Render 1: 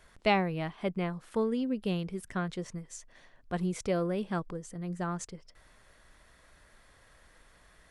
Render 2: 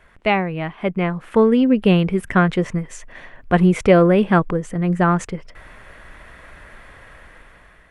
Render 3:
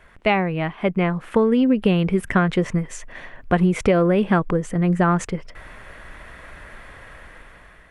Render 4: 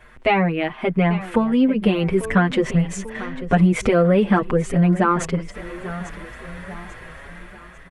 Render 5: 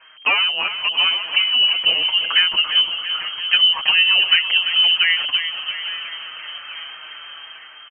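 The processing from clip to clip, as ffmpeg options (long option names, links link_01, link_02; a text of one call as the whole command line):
ffmpeg -i in.wav -af "dynaudnorm=framelen=480:gausssize=5:maxgain=10.5dB,highshelf=frequency=3400:width_type=q:width=1.5:gain=-9.5,volume=7dB" out.wav
ffmpeg -i in.wav -af "acompressor=threshold=-15dB:ratio=6,volume=1.5dB" out.wav
ffmpeg -i in.wav -filter_complex "[0:a]aecho=1:1:843|1686|2529|3372:0.168|0.0688|0.0282|0.0116,asplit=2[link_01][link_02];[link_02]alimiter=limit=-15dB:level=0:latency=1,volume=-0.5dB[link_03];[link_01][link_03]amix=inputs=2:normalize=0,asplit=2[link_04][link_05];[link_05]adelay=6.3,afreqshift=1.6[link_06];[link_04][link_06]amix=inputs=2:normalize=1" out.wav
ffmpeg -i in.wav -af "aecho=1:1:340|680|1020|1360|1700|2040|2380:0.316|0.187|0.11|0.0649|0.0383|0.0226|0.0133,lowpass=frequency=2700:width_type=q:width=0.5098,lowpass=frequency=2700:width_type=q:width=0.6013,lowpass=frequency=2700:width_type=q:width=0.9,lowpass=frequency=2700:width_type=q:width=2.563,afreqshift=-3200" out.wav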